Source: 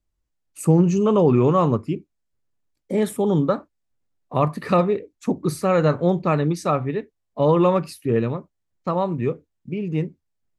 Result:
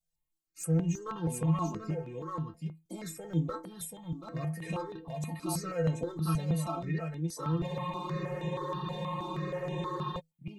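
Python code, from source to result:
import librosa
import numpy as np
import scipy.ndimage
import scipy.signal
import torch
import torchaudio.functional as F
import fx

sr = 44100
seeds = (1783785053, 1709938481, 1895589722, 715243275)

p1 = fx.high_shelf(x, sr, hz=5000.0, db=8.5)
p2 = fx.over_compress(p1, sr, threshold_db=-24.0, ratio=-1.0)
p3 = p1 + F.gain(torch.from_numpy(p2), 1.5).numpy()
p4 = fx.clip_asym(p3, sr, top_db=-10.5, bottom_db=-6.5)
p5 = fx.stiff_resonator(p4, sr, f0_hz=160.0, decay_s=0.28, stiffness=0.008)
p6 = p5 + fx.echo_single(p5, sr, ms=734, db=-5.0, dry=0)
p7 = fx.spec_freeze(p6, sr, seeds[0], at_s=7.69, hold_s=2.5)
p8 = fx.phaser_held(p7, sr, hz=6.3, low_hz=330.0, high_hz=4600.0)
y = F.gain(torch.from_numpy(p8), -4.0).numpy()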